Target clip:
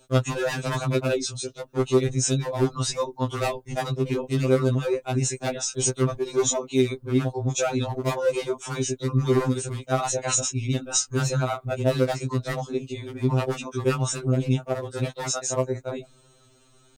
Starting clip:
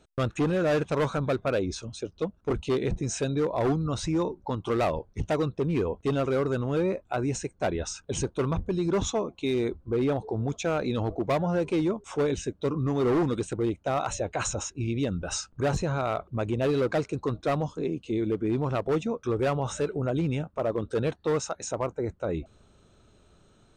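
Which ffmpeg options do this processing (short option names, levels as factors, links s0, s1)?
-af "crystalizer=i=2.5:c=0,atempo=1.4,afftfilt=real='re*2.45*eq(mod(b,6),0)':imag='im*2.45*eq(mod(b,6),0)':win_size=2048:overlap=0.75,volume=1.58"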